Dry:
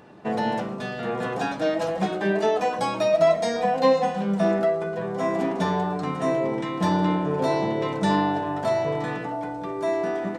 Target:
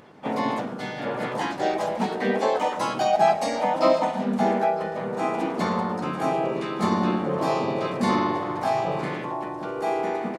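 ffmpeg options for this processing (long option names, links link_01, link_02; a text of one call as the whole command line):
ffmpeg -i in.wav -filter_complex "[0:a]asplit=3[link_01][link_02][link_03];[link_02]asetrate=52444,aresample=44100,atempo=0.840896,volume=-2dB[link_04];[link_03]asetrate=55563,aresample=44100,atempo=0.793701,volume=-3dB[link_05];[link_01][link_04][link_05]amix=inputs=3:normalize=0,aecho=1:1:956:0.0944,volume=-4dB" out.wav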